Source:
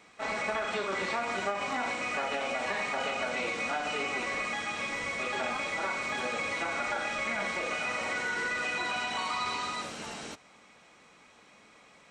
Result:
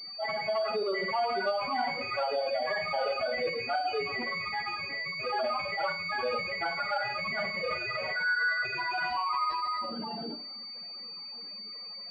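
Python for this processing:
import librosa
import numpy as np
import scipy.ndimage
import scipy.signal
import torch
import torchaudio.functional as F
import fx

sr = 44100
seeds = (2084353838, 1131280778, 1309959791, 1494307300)

y = fx.spec_expand(x, sr, power=3.6)
y = fx.rev_schroeder(y, sr, rt60_s=0.4, comb_ms=30, drr_db=8.5)
y = fx.pwm(y, sr, carrier_hz=4600.0)
y = F.gain(torch.from_numpy(y), 3.0).numpy()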